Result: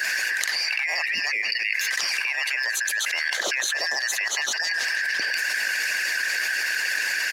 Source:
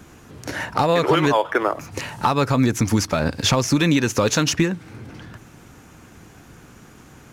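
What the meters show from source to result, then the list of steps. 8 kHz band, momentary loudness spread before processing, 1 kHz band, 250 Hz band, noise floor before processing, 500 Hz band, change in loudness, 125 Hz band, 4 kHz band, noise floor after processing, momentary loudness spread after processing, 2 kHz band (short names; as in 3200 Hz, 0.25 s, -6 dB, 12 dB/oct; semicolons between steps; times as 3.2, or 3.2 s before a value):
+1.0 dB, 14 LU, -14.5 dB, -31.0 dB, -47 dBFS, -19.0 dB, -3.0 dB, under -40 dB, +2.0 dB, -28 dBFS, 1 LU, +8.5 dB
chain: four-band scrambler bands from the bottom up 3142; HPF 460 Hz 12 dB/oct; pre-echo 66 ms -16 dB; reverse; upward compressor, threshold -22 dBFS; reverse; harmonic-percussive split harmonic -18 dB; on a send: feedback echo 0.162 s, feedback 53%, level -21 dB; on the sum: fast leveller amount 100%; gain -8.5 dB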